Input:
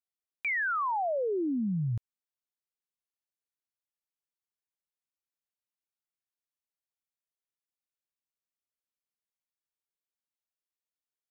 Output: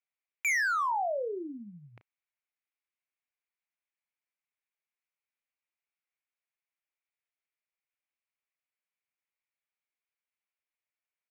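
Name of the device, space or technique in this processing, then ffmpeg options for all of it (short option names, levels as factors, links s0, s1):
megaphone: -filter_complex "[0:a]highpass=530,lowpass=2500,equalizer=f=2300:t=o:w=0.59:g=12,asoftclip=type=hard:threshold=0.0473,asplit=2[s0][s1];[s1]adelay=34,volume=0.282[s2];[s0][s2]amix=inputs=2:normalize=0"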